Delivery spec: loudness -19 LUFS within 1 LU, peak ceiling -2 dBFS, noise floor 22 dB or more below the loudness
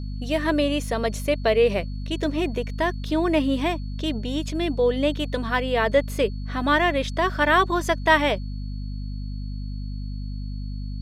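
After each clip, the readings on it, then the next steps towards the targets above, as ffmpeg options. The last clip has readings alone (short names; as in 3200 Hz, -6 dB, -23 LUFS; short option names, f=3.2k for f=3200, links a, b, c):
hum 50 Hz; harmonics up to 250 Hz; hum level -28 dBFS; steady tone 4400 Hz; tone level -51 dBFS; loudness -24.0 LUFS; peak -4.5 dBFS; loudness target -19.0 LUFS
-> -af "bandreject=f=50:t=h:w=6,bandreject=f=100:t=h:w=6,bandreject=f=150:t=h:w=6,bandreject=f=200:t=h:w=6,bandreject=f=250:t=h:w=6"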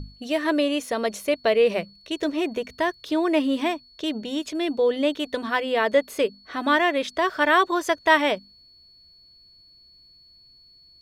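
hum none; steady tone 4400 Hz; tone level -51 dBFS
-> -af "bandreject=f=4.4k:w=30"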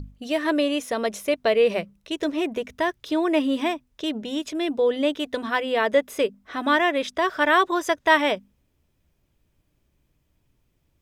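steady tone none; loudness -23.5 LUFS; peak -5.0 dBFS; loudness target -19.0 LUFS
-> -af "volume=4.5dB,alimiter=limit=-2dB:level=0:latency=1"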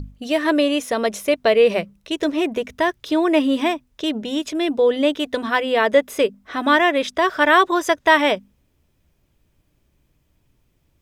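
loudness -19.0 LUFS; peak -2.0 dBFS; noise floor -65 dBFS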